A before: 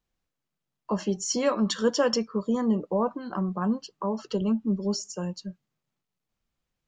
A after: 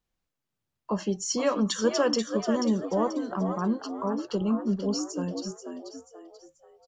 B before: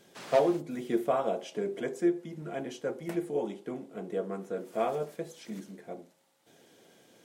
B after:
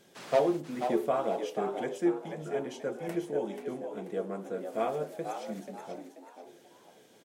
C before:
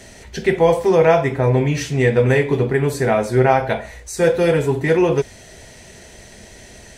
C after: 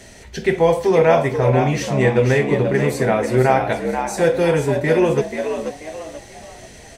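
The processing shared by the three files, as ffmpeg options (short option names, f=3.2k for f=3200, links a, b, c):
-filter_complex "[0:a]asplit=5[a][b][c][d][e];[b]adelay=485,afreqshift=77,volume=-7.5dB[f];[c]adelay=970,afreqshift=154,volume=-16.4dB[g];[d]adelay=1455,afreqshift=231,volume=-25.2dB[h];[e]adelay=1940,afreqshift=308,volume=-34.1dB[i];[a][f][g][h][i]amix=inputs=5:normalize=0,volume=-1dB"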